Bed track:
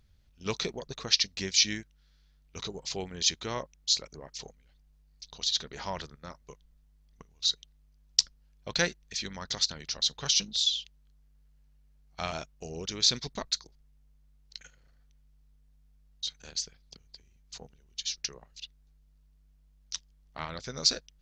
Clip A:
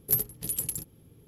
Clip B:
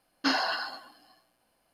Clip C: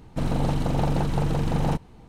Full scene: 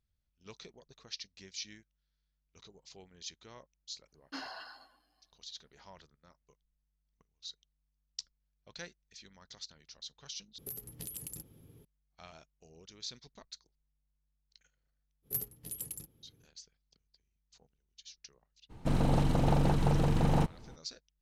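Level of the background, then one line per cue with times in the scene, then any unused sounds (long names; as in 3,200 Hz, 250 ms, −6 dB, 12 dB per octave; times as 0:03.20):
bed track −18.5 dB
0:04.08: mix in B −16.5 dB
0:10.58: overwrite with A −2.5 dB + downward compressor 10 to 1, threshold −36 dBFS
0:15.22: mix in A −10.5 dB, fades 0.05 s
0:18.69: mix in C −3.5 dB, fades 0.02 s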